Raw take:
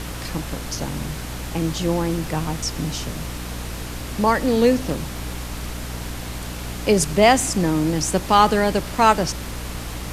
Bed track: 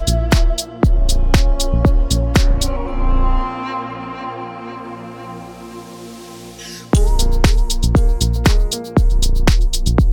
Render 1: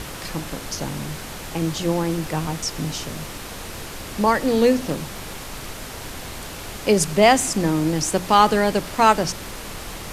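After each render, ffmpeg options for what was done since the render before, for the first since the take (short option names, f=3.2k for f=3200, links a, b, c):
-af "bandreject=f=60:t=h:w=6,bandreject=f=120:t=h:w=6,bandreject=f=180:t=h:w=6,bandreject=f=240:t=h:w=6,bandreject=f=300:t=h:w=6"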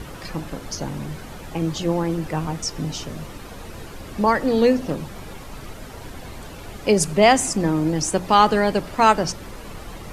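-af "afftdn=nr=10:nf=-35"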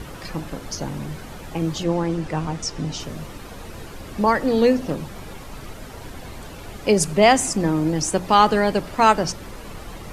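-filter_complex "[0:a]asettb=1/sr,asplit=3[a][b][c];[a]atrim=end=1.834[d];[b]atrim=start=1.83:end=3,asetpts=PTS-STARTPTS,afade=t=in:d=0.004:c=qsin,afade=t=out:st=1.166:d=0.004:c=qsin,lowpass=8.4k[e];[c]atrim=start=2.996[f];[d][e]acrossfade=d=0.004:c1=hsin:c2=qsin[g];[g][f]acrossfade=d=0.004:c1=qsin:c2=hsin"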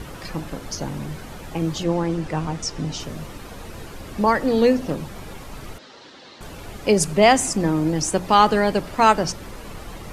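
-filter_complex "[0:a]asettb=1/sr,asplit=3[a][b][c];[a]atrim=end=5.784[d];[b]atrim=start=5.78:end=6.41,asetpts=PTS-STARTPTS,afade=t=in:d=0.004:c=qsin,afade=t=out:st=0.626:d=0.004:c=qsin,highpass=390,equalizer=f=430:t=q:w=4:g=-5,equalizer=f=690:t=q:w=4:g=-9,equalizer=f=1k:t=q:w=4:g=-5,equalizer=f=1.5k:t=q:w=4:g=-4,equalizer=f=2.3k:t=q:w=4:g=-6,equalizer=f=4k:t=q:w=4:g=5,lowpass=f=5.6k:w=0.5412,lowpass=f=5.6k:w=1.3066[e];[c]atrim=start=6.406[f];[d][e]acrossfade=d=0.004:c1=hsin:c2=qsin[g];[g][f]acrossfade=d=0.004:c1=qsin:c2=hsin"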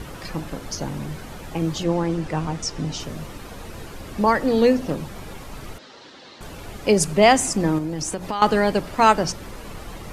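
-filter_complex "[0:a]asettb=1/sr,asplit=3[a][b][c];[a]atrim=end=7.784[d];[b]atrim=start=7.78:end=8.42,asetpts=PTS-STARTPTS,afade=t=in:d=0.004:c=qsin,afade=t=out:st=0.636:d=0.004:c=qsin,acompressor=threshold=-23dB:ratio=5:attack=3.2:release=140:knee=1:detection=peak[e];[c]atrim=start=8.416[f];[d][e]acrossfade=d=0.004:c1=hsin:c2=qsin[g];[g][f]acrossfade=d=0.004:c1=qsin:c2=hsin"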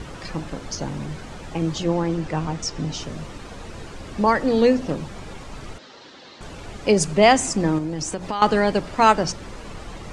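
-af "lowpass=f=8.6k:w=0.5412,lowpass=f=8.6k:w=1.3066"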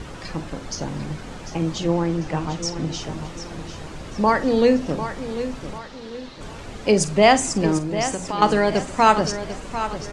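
-filter_complex "[0:a]asplit=2[a][b];[b]adelay=47,volume=-14dB[c];[a][c]amix=inputs=2:normalize=0,aecho=1:1:746|1492|2238|2984:0.282|0.113|0.0451|0.018"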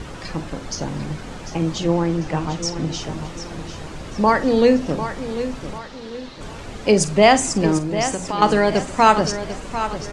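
-af "volume=2dB,alimiter=limit=-1dB:level=0:latency=1"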